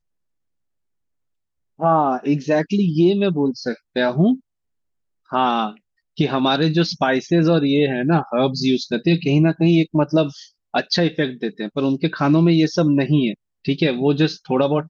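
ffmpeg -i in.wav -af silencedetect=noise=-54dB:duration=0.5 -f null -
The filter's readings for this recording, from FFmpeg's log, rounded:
silence_start: 0.00
silence_end: 1.78 | silence_duration: 1.78
silence_start: 4.40
silence_end: 5.26 | silence_duration: 0.85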